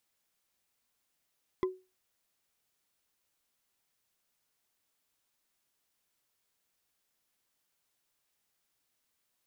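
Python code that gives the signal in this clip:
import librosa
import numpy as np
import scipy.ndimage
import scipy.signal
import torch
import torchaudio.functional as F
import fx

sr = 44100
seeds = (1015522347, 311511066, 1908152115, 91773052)

y = fx.strike_wood(sr, length_s=0.45, level_db=-23.5, body='bar', hz=372.0, decay_s=0.28, tilt_db=7.0, modes=5)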